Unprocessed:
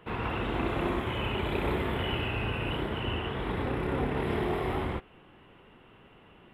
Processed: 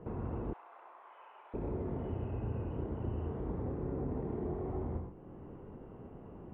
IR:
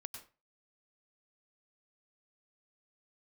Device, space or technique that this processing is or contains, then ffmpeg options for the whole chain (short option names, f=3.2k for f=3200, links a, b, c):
television next door: -filter_complex "[0:a]acompressor=threshold=-47dB:ratio=3,lowpass=570[a];[1:a]atrim=start_sample=2205[b];[a][b]afir=irnorm=-1:irlink=0,asettb=1/sr,asplit=3[c][d][e];[c]atrim=end=0.534[f];[d]atrim=start=0.53:end=1.54,asetpts=PTS-STARTPTS,afade=t=in:d=0.004:c=qsin,afade=t=out:st=1.006:d=0.004:c=qsin,highpass=f=890:w=0.5412,highpass=f=890:w=1.3066[g];[e]atrim=start=1.536[h];[f][g]acrossfade=d=0.004:c1=hsin:c2=qsin[i];[i][h]acrossfade=d=0.004:c1=qsin:c2=hsin,volume=12.5dB"